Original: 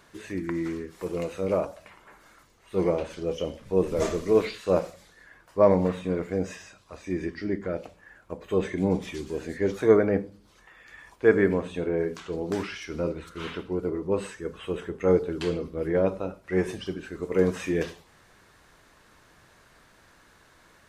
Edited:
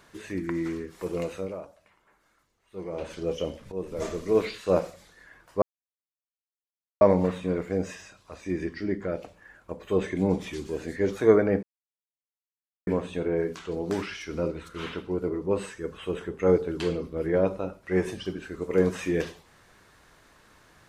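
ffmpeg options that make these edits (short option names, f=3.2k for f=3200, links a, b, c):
-filter_complex "[0:a]asplit=7[a][b][c][d][e][f][g];[a]atrim=end=1.53,asetpts=PTS-STARTPTS,afade=t=out:st=1.34:d=0.19:silence=0.237137[h];[b]atrim=start=1.53:end=2.9,asetpts=PTS-STARTPTS,volume=-12.5dB[i];[c]atrim=start=2.9:end=3.72,asetpts=PTS-STARTPTS,afade=t=in:d=0.19:silence=0.237137,afade=t=out:st=0.816:d=0.004:c=hsin:silence=0.237137[j];[d]atrim=start=3.72:end=5.62,asetpts=PTS-STARTPTS,afade=t=in:d=0.85:silence=0.237137,afade=t=out:st=1.896:d=0.004:c=hsin,apad=pad_dur=1.39[k];[e]atrim=start=5.62:end=10.24,asetpts=PTS-STARTPTS,afade=t=in:d=0.004:c=hsin,afade=t=out:st=4.616:d=0.004:c=hsin[l];[f]atrim=start=10.24:end=11.48,asetpts=PTS-STARTPTS,volume=0[m];[g]atrim=start=11.48,asetpts=PTS-STARTPTS,afade=t=in:d=0.004:c=hsin[n];[h][i][j][k][l][m][n]concat=n=7:v=0:a=1"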